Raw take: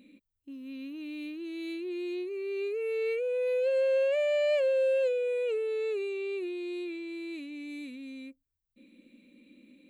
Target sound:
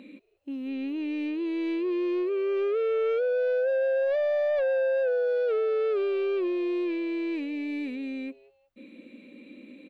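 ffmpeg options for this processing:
ffmpeg -i in.wav -filter_complex "[0:a]acrossover=split=2600[link_01][link_02];[link_02]acompressor=threshold=-58dB:ratio=4:attack=1:release=60[link_03];[link_01][link_03]amix=inputs=2:normalize=0,asplit=2[link_04][link_05];[link_05]highpass=frequency=720:poles=1,volume=18dB,asoftclip=type=tanh:threshold=-20.5dB[link_06];[link_04][link_06]amix=inputs=2:normalize=0,lowpass=frequency=1000:poles=1,volume=-6dB,asoftclip=type=tanh:threshold=-28dB,asplit=2[link_07][link_08];[link_08]asplit=2[link_09][link_10];[link_09]adelay=183,afreqshift=140,volume=-22.5dB[link_11];[link_10]adelay=366,afreqshift=280,volume=-32.1dB[link_12];[link_11][link_12]amix=inputs=2:normalize=0[link_13];[link_07][link_13]amix=inputs=2:normalize=0,volume=5.5dB" out.wav

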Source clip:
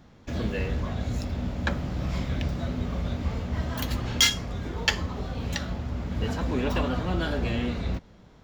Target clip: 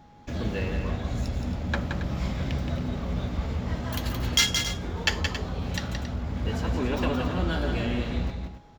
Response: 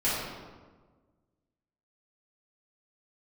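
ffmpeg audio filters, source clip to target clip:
-filter_complex "[0:a]aeval=exprs='val(0)+0.00224*sin(2*PI*830*n/s)':channel_layout=same,atempo=0.96,asplit=2[link_01][link_02];[link_02]aecho=0:1:172|274.1:0.501|0.251[link_03];[link_01][link_03]amix=inputs=2:normalize=0,volume=-1dB"

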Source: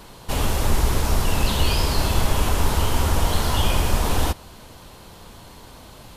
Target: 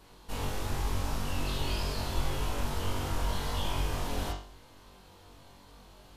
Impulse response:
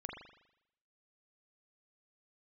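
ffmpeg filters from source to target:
-filter_complex "[0:a]flanger=delay=2.4:depth=2.1:regen=-66:speed=1.3:shape=sinusoidal[link_01];[1:a]atrim=start_sample=2205,asetrate=83790,aresample=44100[link_02];[link_01][link_02]afir=irnorm=-1:irlink=0"

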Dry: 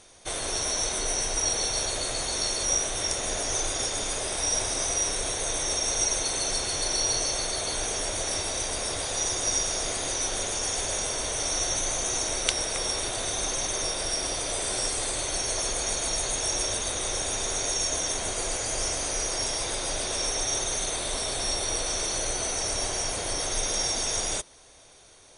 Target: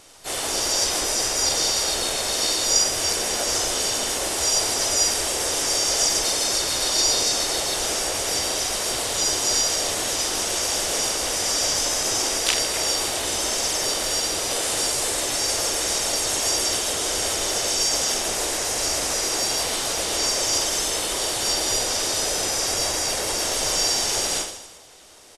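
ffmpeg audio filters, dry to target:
ffmpeg -i in.wav -filter_complex "[0:a]lowshelf=frequency=160:gain=-7.5,aecho=1:1:40|92|159.6|247.5|361.7:0.631|0.398|0.251|0.158|0.1,asplit=4[link_01][link_02][link_03][link_04];[link_02]asetrate=37084,aresample=44100,atempo=1.18921,volume=-1dB[link_05];[link_03]asetrate=52444,aresample=44100,atempo=0.840896,volume=-6dB[link_06];[link_04]asetrate=55563,aresample=44100,atempo=0.793701,volume=-8dB[link_07];[link_01][link_05][link_06][link_07]amix=inputs=4:normalize=0" out.wav

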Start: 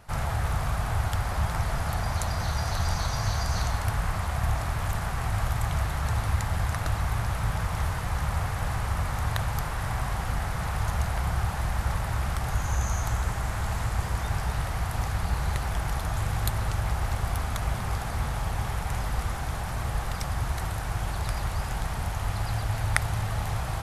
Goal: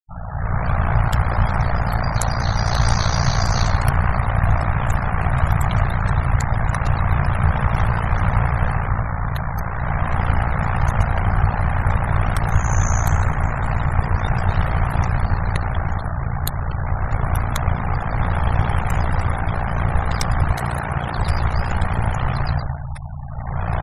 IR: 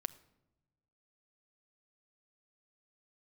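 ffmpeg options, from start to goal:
-filter_complex "[0:a]asettb=1/sr,asplit=3[link_01][link_02][link_03];[link_01]atrim=end=20.514[link_04];[link_02]atrim=start=20.51:end=21.17,asetpts=PTS-STARTPTS,afade=type=in:duration=0.004:curve=qsin,afade=type=out:start_time=0.656:duration=0.004:curve=qsin,highpass=frequency=89:width=0.5412,highpass=frequency=89:width=1.3066[link_05];[link_03]atrim=start=21.166[link_06];[link_04][link_05]acrossfade=duration=0.004:curve1=hsin:curve2=qsin[link_07];[link_07][link_06]acrossfade=duration=0.004:curve1=qsin:curve2=hsin,aecho=1:1:446|892:0.0794|0.023,dynaudnorm=framelen=140:gausssize=7:maxgain=15dB,afftfilt=real='re*gte(hypot(re,im),0.0562)':imag='im*gte(hypot(re,im),0.0562)':win_size=1024:overlap=0.75,aeval=exprs='val(0)*sin(2*PI*29*n/s)':channel_layout=same"

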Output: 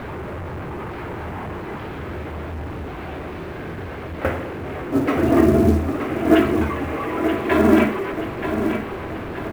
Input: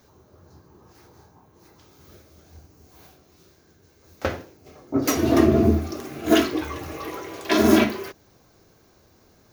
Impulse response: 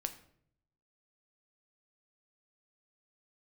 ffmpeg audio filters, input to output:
-filter_complex "[0:a]aeval=exprs='val(0)+0.5*0.0562*sgn(val(0))':channel_layout=same,lowpass=frequency=2500:width=0.5412,lowpass=frequency=2500:width=1.3066,acrusher=bits=7:mode=log:mix=0:aa=0.000001,asplit=2[link_01][link_02];[link_02]aecho=0:1:930|1860|2790|3720|4650:0.398|0.183|0.0842|0.0388|0.0178[link_03];[link_01][link_03]amix=inputs=2:normalize=0,volume=1dB"

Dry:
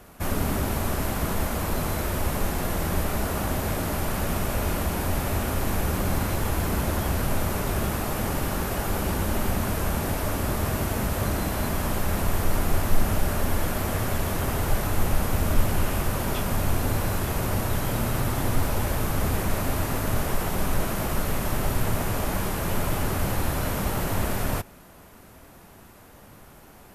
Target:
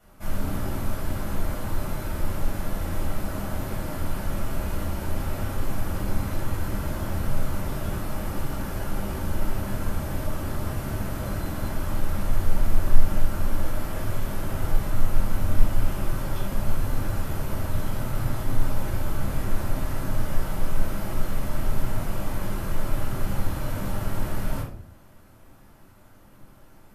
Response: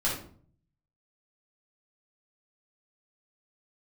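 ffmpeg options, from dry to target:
-filter_complex "[1:a]atrim=start_sample=2205[link_01];[0:a][link_01]afir=irnorm=-1:irlink=0,volume=-15dB"

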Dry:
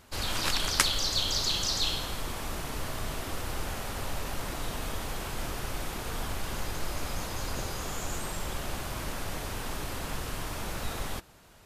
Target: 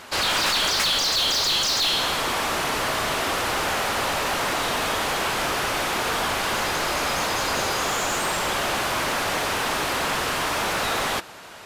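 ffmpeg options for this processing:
ffmpeg -i in.wav -filter_complex "[0:a]asplit=2[link_01][link_02];[link_02]highpass=frequency=720:poles=1,volume=33dB,asoftclip=type=tanh:threshold=-3.5dB[link_03];[link_01][link_03]amix=inputs=2:normalize=0,lowpass=frequency=3700:poles=1,volume=-6dB,volume=-7.5dB" out.wav

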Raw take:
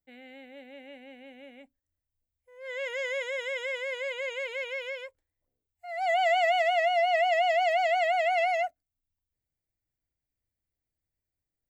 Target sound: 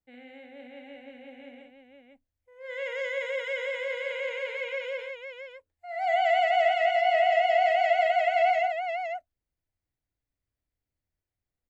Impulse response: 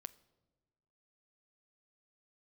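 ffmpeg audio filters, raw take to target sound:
-af "lowpass=frequency=2900:poles=1,aecho=1:1:57|512:0.562|0.562"

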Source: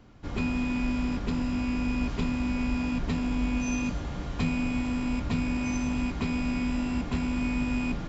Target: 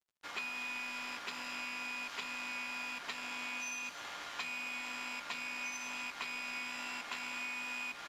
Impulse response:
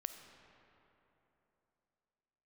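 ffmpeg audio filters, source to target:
-filter_complex "[0:a]highpass=1300,acompressor=threshold=-43dB:ratio=6,aeval=exprs='sgn(val(0))*max(abs(val(0))-0.00112,0)':channel_layout=same,asplit=2[link_01][link_02];[1:a]atrim=start_sample=2205,lowpass=5100[link_03];[link_02][link_03]afir=irnorm=-1:irlink=0,volume=-9dB[link_04];[link_01][link_04]amix=inputs=2:normalize=0,aresample=32000,aresample=44100,volume=5dB"

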